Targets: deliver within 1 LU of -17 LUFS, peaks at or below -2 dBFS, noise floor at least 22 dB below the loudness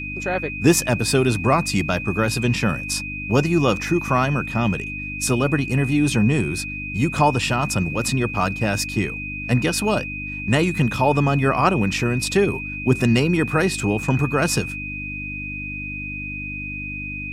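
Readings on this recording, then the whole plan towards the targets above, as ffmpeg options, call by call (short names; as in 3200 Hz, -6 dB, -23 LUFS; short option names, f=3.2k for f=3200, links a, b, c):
hum 50 Hz; harmonics up to 300 Hz; hum level -31 dBFS; steady tone 2500 Hz; tone level -29 dBFS; loudness -21.0 LUFS; peak -3.5 dBFS; loudness target -17.0 LUFS
-> -af "bandreject=f=50:t=h:w=4,bandreject=f=100:t=h:w=4,bandreject=f=150:t=h:w=4,bandreject=f=200:t=h:w=4,bandreject=f=250:t=h:w=4,bandreject=f=300:t=h:w=4"
-af "bandreject=f=2.5k:w=30"
-af "volume=4dB,alimiter=limit=-2dB:level=0:latency=1"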